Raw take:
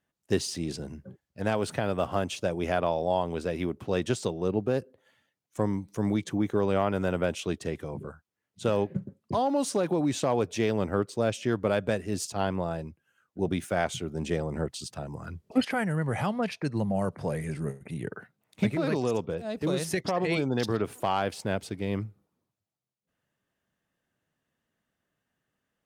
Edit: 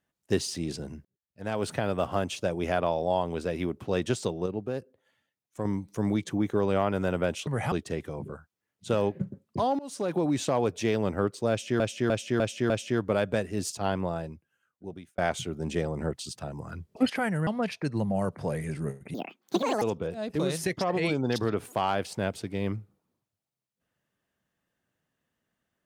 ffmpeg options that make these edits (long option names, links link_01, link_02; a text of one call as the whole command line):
ffmpeg -i in.wav -filter_complex "[0:a]asplit=15[link_01][link_02][link_03][link_04][link_05][link_06][link_07][link_08][link_09][link_10][link_11][link_12][link_13][link_14][link_15];[link_01]atrim=end=1.05,asetpts=PTS-STARTPTS,afade=type=out:start_time=1.046:duration=0.004:curve=hsin[link_16];[link_02]atrim=start=1.05:end=4.462,asetpts=PTS-STARTPTS,afade=type=in:duration=0.59:curve=qua[link_17];[link_03]atrim=start=4.458:end=5.652,asetpts=PTS-STARTPTS,volume=-5.5dB[link_18];[link_04]atrim=start=5.648:end=7.472[link_19];[link_05]atrim=start=16.018:end=16.272[link_20];[link_06]atrim=start=7.468:end=9.54,asetpts=PTS-STARTPTS,afade=type=out:start_time=2.068:duration=0.004:curve=hsin:silence=0.0668344[link_21];[link_07]atrim=start=9.54:end=11.552,asetpts=PTS-STARTPTS,afade=type=in:duration=0.39:silence=0.0668344[link_22];[link_08]atrim=start=11.248:end=11.552[link_23];[link_09]atrim=start=11.248:end=11.552[link_24];[link_10]atrim=start=11.248:end=11.552[link_25];[link_11]atrim=start=11.248:end=13.73,asetpts=PTS-STARTPTS,afade=type=out:start_time=1.382:duration=1.1[link_26];[link_12]atrim=start=13.73:end=16.022,asetpts=PTS-STARTPTS,afade=type=in:duration=0.004:curve=hsin[link_27];[link_13]atrim=start=16.268:end=17.944[link_28];[link_14]atrim=start=17.94:end=19.09,asetpts=PTS-STARTPTS,asetrate=74970,aresample=44100,atrim=end_sample=29832,asetpts=PTS-STARTPTS[link_29];[link_15]atrim=start=19.086[link_30];[link_16][link_17]concat=n=2:v=0:a=1[link_31];[link_31][link_18]acrossfade=duration=0.004:curve1=hsin:curve2=hsin[link_32];[link_32][link_19]acrossfade=duration=0.004:curve1=hsin:curve2=hsin[link_33];[link_33][link_20]acrossfade=duration=0.004:curve1=hsin:curve2=hsin[link_34];[link_21][link_22]concat=n=2:v=0:a=1[link_35];[link_34][link_35]acrossfade=duration=0.004:curve1=hsin:curve2=hsin[link_36];[link_36][link_23]acrossfade=duration=0.004:curve1=hsin:curve2=hsin[link_37];[link_37][link_24]acrossfade=duration=0.004:curve1=hsin:curve2=hsin[link_38];[link_38][link_25]acrossfade=duration=0.004:curve1=hsin:curve2=hsin[link_39];[link_26][link_27]concat=n=2:v=0:a=1[link_40];[link_39][link_40]acrossfade=duration=0.004:curve1=hsin:curve2=hsin[link_41];[link_41][link_28]acrossfade=duration=0.004:curve1=hsin:curve2=hsin[link_42];[link_42][link_29]acrossfade=duration=0.004:curve1=hsin:curve2=hsin[link_43];[link_43][link_30]acrossfade=duration=0.004:curve1=hsin:curve2=hsin" out.wav